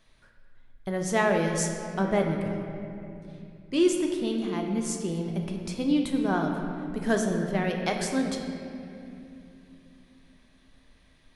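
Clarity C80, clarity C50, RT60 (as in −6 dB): 5.0 dB, 4.0 dB, 2.8 s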